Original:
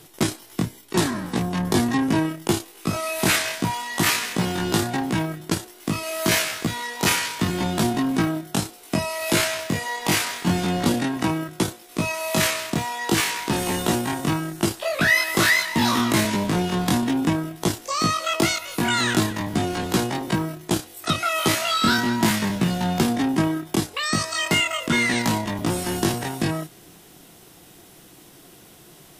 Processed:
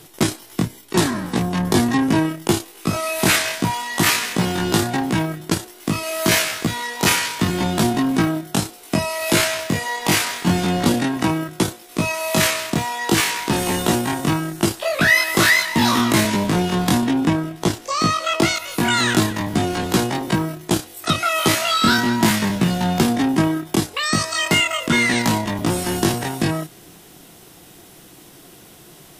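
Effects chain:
0:17.06–0:18.56: high-shelf EQ 8,700 Hz −8.5 dB
every ending faded ahead of time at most 410 dB per second
level +3.5 dB

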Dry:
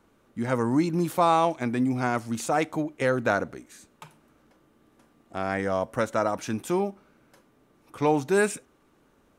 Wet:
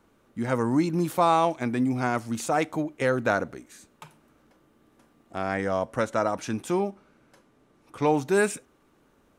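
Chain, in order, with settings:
0:05.43–0:08.12: low-pass filter 11,000 Hz 12 dB per octave

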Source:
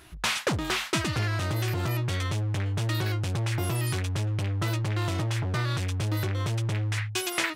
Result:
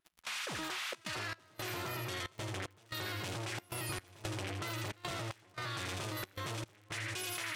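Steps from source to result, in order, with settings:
high-pass filter 510 Hz 6 dB per octave
echo with a time of its own for lows and highs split 1,100 Hz, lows 454 ms, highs 81 ms, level −5.5 dB
gate pattern "..xxxxx.xx" 113 BPM −24 dB
surface crackle 53 per second −47 dBFS
output level in coarse steps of 24 dB
soft clipping −37.5 dBFS, distortion −23 dB
pitch vibrato 2.2 Hz 28 cents
0:03.89–0:05.11: multiband upward and downward compressor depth 100%
level +9 dB

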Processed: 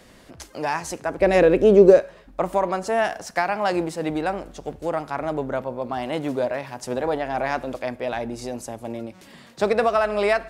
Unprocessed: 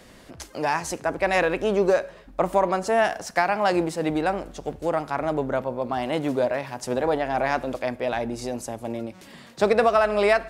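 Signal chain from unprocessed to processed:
0:01.20–0:02.00: low shelf with overshoot 650 Hz +8.5 dB, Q 1.5
level −1 dB

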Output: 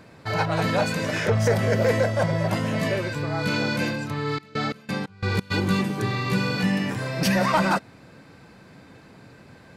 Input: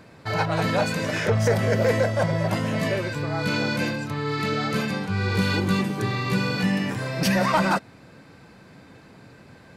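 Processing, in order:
0:04.36–0:05.50: gate pattern ".x.x.x.x" 89 BPM −24 dB

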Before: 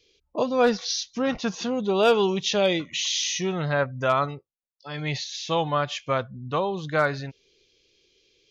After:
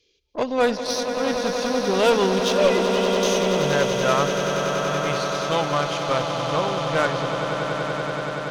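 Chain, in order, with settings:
0:02.52–0:03.23: three sine waves on the formant tracks
harmonic generator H 2 −14 dB, 5 −30 dB, 7 −25 dB, 8 −24 dB, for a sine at −10 dBFS
echo that builds up and dies away 95 ms, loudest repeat 8, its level −10 dB

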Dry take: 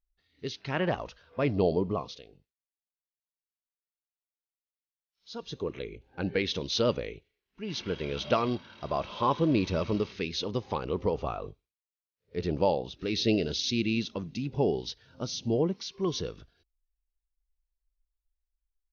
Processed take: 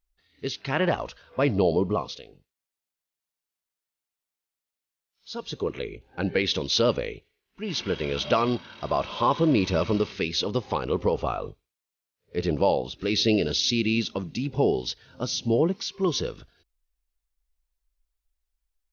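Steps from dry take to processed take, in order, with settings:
low-shelf EQ 370 Hz −3 dB
in parallel at +1 dB: brickwall limiter −20.5 dBFS, peak gain reduction 7 dB

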